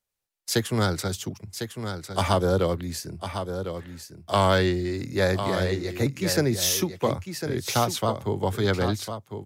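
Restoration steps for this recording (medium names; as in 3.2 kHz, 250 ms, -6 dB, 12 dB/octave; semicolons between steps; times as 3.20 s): clip repair -11 dBFS; inverse comb 1052 ms -8.5 dB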